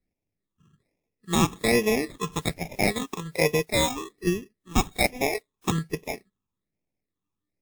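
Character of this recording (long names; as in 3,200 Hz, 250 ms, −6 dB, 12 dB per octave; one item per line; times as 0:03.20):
aliases and images of a low sample rate 1,500 Hz, jitter 0%
phaser sweep stages 8, 1.2 Hz, lowest notch 600–1,300 Hz
WMA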